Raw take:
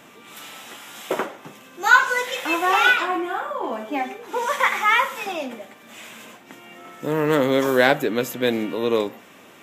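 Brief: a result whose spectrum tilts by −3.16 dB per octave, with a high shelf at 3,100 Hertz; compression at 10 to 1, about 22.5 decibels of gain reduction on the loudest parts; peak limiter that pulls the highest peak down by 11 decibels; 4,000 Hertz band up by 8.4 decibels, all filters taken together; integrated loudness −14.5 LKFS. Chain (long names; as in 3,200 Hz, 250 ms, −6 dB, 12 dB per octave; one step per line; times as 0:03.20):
high-shelf EQ 3,100 Hz +3 dB
parametric band 4,000 Hz +8.5 dB
downward compressor 10 to 1, threshold −30 dBFS
level +23 dB
brickwall limiter −5.5 dBFS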